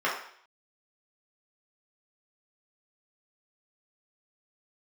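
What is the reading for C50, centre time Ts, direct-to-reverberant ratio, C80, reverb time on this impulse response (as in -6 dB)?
4.5 dB, 38 ms, -6.5 dB, 8.5 dB, 0.60 s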